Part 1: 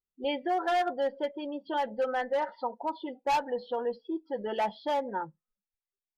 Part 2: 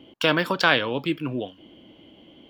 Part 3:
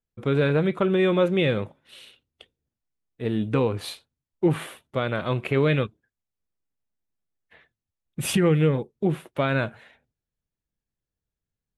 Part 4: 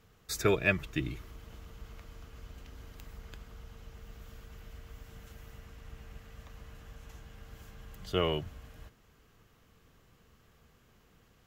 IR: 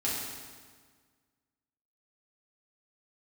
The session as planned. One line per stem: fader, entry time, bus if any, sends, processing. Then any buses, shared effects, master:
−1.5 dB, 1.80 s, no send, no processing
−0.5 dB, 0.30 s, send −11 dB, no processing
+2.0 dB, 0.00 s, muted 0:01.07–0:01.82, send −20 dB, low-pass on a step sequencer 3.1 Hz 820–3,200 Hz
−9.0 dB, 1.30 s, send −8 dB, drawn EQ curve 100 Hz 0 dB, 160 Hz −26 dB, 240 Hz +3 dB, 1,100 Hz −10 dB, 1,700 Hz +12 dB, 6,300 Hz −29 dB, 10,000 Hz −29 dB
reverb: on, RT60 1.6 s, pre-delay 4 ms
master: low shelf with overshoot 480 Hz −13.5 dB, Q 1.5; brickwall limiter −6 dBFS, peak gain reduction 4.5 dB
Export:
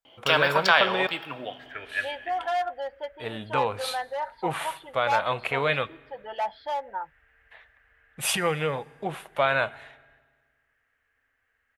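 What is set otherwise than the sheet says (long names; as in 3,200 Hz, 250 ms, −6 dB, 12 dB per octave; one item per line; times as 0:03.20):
stem 2: entry 0.30 s → 0.05 s
stem 3: missing low-pass on a step sequencer 3.1 Hz 820–3,200 Hz
reverb return −7.0 dB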